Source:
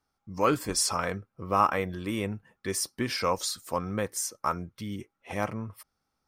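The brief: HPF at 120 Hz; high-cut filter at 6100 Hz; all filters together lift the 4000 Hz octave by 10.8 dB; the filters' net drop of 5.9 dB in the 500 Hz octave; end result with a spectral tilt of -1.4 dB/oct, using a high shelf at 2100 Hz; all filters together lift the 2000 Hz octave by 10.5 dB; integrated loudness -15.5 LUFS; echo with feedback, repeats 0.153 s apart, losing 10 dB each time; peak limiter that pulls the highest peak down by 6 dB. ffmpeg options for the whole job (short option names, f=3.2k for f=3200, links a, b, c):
-af "highpass=120,lowpass=6.1k,equalizer=f=500:t=o:g=-8,equalizer=f=2k:t=o:g=7.5,highshelf=f=2.1k:g=7.5,equalizer=f=4k:t=o:g=6.5,alimiter=limit=-13dB:level=0:latency=1,aecho=1:1:153|306|459|612:0.316|0.101|0.0324|0.0104,volume=11dB"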